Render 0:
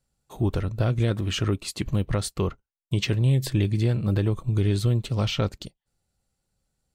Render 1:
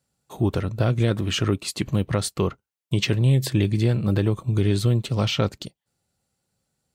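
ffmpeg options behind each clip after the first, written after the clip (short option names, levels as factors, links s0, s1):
-af "highpass=99,volume=1.5"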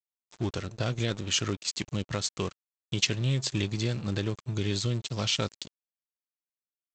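-af "aresample=16000,aeval=exprs='sgn(val(0))*max(abs(val(0))-0.0158,0)':c=same,aresample=44100,crystalizer=i=5.5:c=0,volume=0.376"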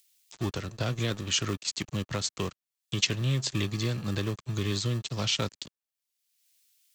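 -filter_complex "[0:a]acrossover=split=190|370|2300[s0][s1][s2][s3];[s1]acrusher=samples=30:mix=1:aa=0.000001[s4];[s3]acompressor=mode=upward:threshold=0.00708:ratio=2.5[s5];[s0][s4][s2][s5]amix=inputs=4:normalize=0"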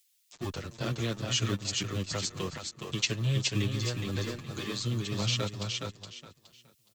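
-filter_complex "[0:a]asplit=2[s0][s1];[s1]aecho=0:1:418|836|1254|1672:0.631|0.164|0.0427|0.0111[s2];[s0][s2]amix=inputs=2:normalize=0,asplit=2[s3][s4];[s4]adelay=7.7,afreqshift=-0.52[s5];[s3][s5]amix=inputs=2:normalize=1"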